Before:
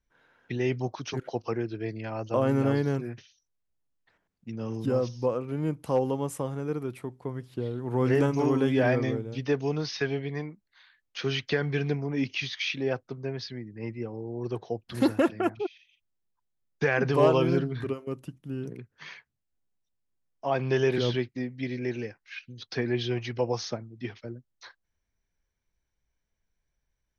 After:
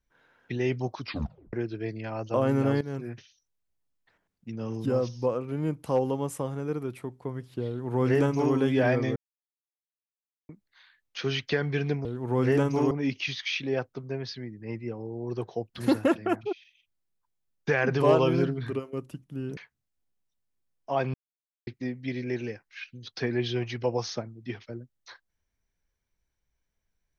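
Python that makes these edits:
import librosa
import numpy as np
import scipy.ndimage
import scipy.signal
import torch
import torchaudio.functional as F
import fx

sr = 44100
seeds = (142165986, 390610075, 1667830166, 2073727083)

y = fx.edit(x, sr, fx.tape_stop(start_s=1.0, length_s=0.53),
    fx.fade_in_from(start_s=2.81, length_s=0.31, floor_db=-15.0),
    fx.duplicate(start_s=7.68, length_s=0.86, to_s=12.05),
    fx.silence(start_s=9.16, length_s=1.33),
    fx.cut(start_s=18.71, length_s=0.41),
    fx.silence(start_s=20.69, length_s=0.53), tone=tone)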